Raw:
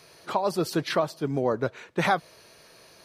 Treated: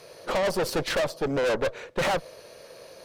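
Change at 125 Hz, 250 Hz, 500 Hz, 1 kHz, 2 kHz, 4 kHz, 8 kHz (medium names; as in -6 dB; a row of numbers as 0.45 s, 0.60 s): -3.5 dB, -3.5 dB, +2.0 dB, -3.0 dB, +1.5 dB, +3.0 dB, +4.0 dB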